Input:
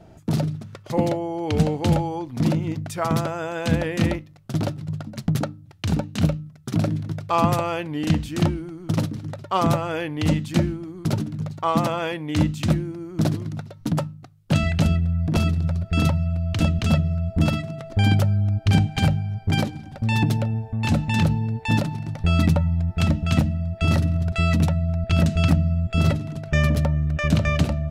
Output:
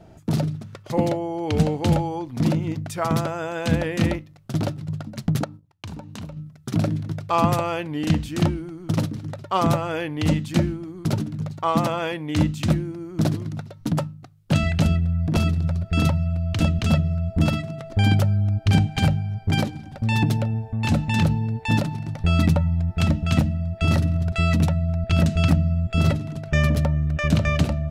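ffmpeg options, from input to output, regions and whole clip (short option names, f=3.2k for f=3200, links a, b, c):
-filter_complex "[0:a]asettb=1/sr,asplit=3[a][b][c];[a]atrim=end=5.444[d];[b]atrim=start=5.44:end=6.37,asetpts=PTS-STARTPTS,afade=t=in:d=0.004:c=qsin,afade=t=out:st=0.926:d=0.004:c=qsin,agate=range=-18dB:threshold=-43dB:ratio=16:release=100:detection=peak,equalizer=f=980:t=o:w=0.35:g=9.5,acompressor=threshold=-34dB:ratio=4:attack=3.2:release=140:knee=1:detection=peak[e];[c]atrim=start=6.366[f];[d][e]acrossfade=d=0.004:c1=hsin:c2=qsin[g];[g][f]acrossfade=d=0.004:c1=qsin:c2=hsin"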